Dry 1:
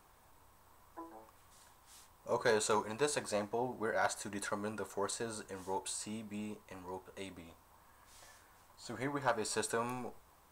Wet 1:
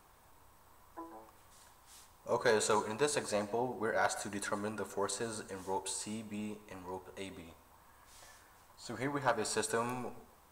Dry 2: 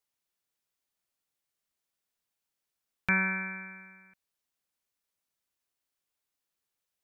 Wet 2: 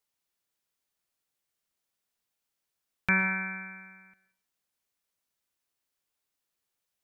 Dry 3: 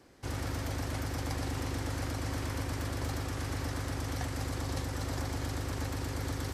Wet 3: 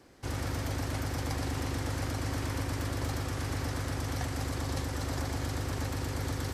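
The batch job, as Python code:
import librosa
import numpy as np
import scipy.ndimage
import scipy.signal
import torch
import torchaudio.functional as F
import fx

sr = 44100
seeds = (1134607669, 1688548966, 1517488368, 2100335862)

y = fx.rev_plate(x, sr, seeds[0], rt60_s=0.58, hf_ratio=0.8, predelay_ms=100, drr_db=15.0)
y = y * librosa.db_to_amplitude(1.5)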